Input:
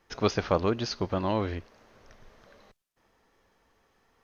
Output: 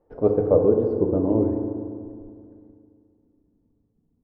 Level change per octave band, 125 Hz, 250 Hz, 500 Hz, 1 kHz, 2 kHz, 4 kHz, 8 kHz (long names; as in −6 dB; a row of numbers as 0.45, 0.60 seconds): +4.5 dB, +9.0 dB, +10.0 dB, −4.5 dB, below −15 dB, below −35 dB, can't be measured